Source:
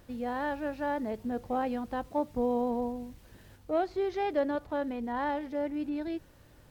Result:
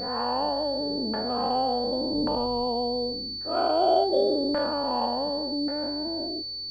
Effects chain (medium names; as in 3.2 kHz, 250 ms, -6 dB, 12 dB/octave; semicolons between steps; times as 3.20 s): every event in the spectrogram widened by 480 ms; LFO low-pass saw down 0.88 Hz 300–1600 Hz; class-D stage that switches slowly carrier 4.5 kHz; trim -4 dB